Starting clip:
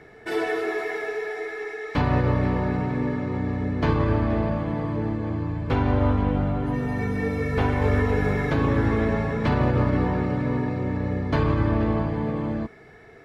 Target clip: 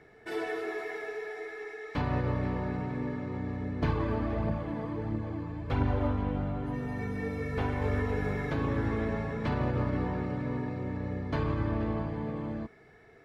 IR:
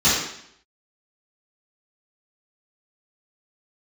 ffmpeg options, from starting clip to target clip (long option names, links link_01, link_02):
-filter_complex "[0:a]asettb=1/sr,asplit=3[link_01][link_02][link_03];[link_01]atrim=end=3.824[link_04];[link_02]atrim=start=3.82:end=6.08,asetpts=PTS-STARTPTS,afade=type=in:duration=0.004:curve=qsin,afade=type=out:start_time=2.256:duration=0.004:curve=qsin,aphaser=in_gain=1:out_gain=1:delay=4.8:decay=0.42:speed=1.5:type=triangular[link_05];[link_03]atrim=start=6.076[link_06];[link_04][link_05]acrossfade=duration=0.004:curve1=hsin:curve2=qsin[link_07];[link_07][link_06]acrossfade=duration=0.004:curve1=qsin:curve2=hsin,volume=-8.5dB"